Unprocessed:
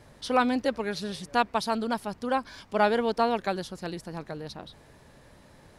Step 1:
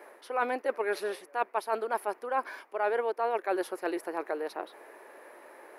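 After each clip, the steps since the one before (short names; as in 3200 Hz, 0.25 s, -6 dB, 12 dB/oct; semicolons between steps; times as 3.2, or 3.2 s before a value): Chebyshev high-pass 350 Hz, order 4; band shelf 5100 Hz -14.5 dB; reverse; compressor 6:1, threshold -34 dBFS, peak gain reduction 15.5 dB; reverse; gain +7.5 dB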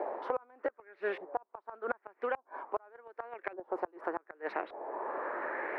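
LFO low-pass saw up 0.85 Hz 720–2500 Hz; flipped gate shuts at -19 dBFS, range -32 dB; three-band squash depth 100%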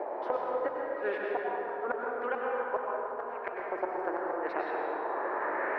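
plate-style reverb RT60 4 s, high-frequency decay 0.45×, pre-delay 85 ms, DRR -3.5 dB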